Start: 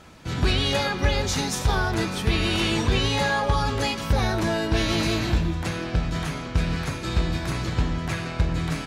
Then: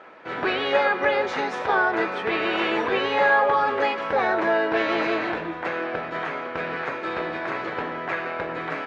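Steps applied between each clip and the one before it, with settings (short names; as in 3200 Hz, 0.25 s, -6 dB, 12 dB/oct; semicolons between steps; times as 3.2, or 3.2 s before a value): Chebyshev band-pass 450–1900 Hz, order 2; gain +6.5 dB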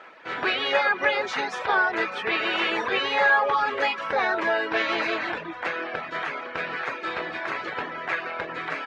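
reverb removal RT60 0.62 s; tilt shelf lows -5 dB, about 1100 Hz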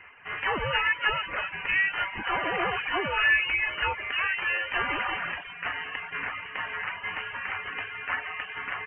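HPF 1300 Hz 6 dB/oct; inverted band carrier 3400 Hz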